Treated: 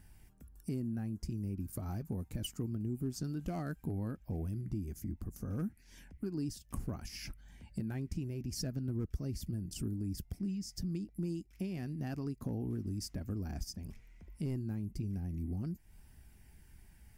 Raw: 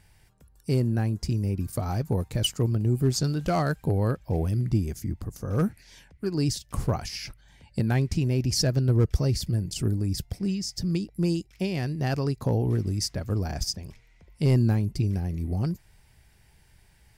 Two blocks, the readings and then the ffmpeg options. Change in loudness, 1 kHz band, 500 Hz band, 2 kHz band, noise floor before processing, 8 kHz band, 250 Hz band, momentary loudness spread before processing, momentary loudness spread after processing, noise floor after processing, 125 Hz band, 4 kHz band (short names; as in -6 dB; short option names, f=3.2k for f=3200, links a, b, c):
-13.0 dB, -17.0 dB, -16.0 dB, -15.5 dB, -59 dBFS, -13.5 dB, -10.0 dB, 8 LU, 6 LU, -61 dBFS, -14.0 dB, -16.0 dB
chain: -af "equalizer=f=125:t=o:w=1:g=-7,equalizer=f=250:t=o:w=1:g=5,equalizer=f=500:t=o:w=1:g=-9,equalizer=f=1k:t=o:w=1:g=-6,equalizer=f=2k:t=o:w=1:g=-4,equalizer=f=4k:t=o:w=1:g=-11,equalizer=f=8k:t=o:w=1:g=-4,acompressor=threshold=-43dB:ratio=2.5,flanger=delay=0.2:depth=1.9:regen=-80:speed=0.31:shape=sinusoidal,volume=6.5dB"